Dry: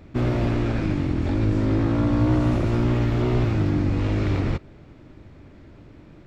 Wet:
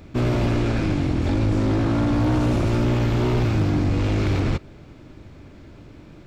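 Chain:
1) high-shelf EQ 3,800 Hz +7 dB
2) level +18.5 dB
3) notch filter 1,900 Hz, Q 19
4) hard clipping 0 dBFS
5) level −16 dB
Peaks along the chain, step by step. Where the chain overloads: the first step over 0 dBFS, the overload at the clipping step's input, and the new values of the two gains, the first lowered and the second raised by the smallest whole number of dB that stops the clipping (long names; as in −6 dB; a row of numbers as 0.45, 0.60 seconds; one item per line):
−9.0, +9.5, +9.5, 0.0, −16.0 dBFS
step 2, 9.5 dB
step 2 +8.5 dB, step 5 −6 dB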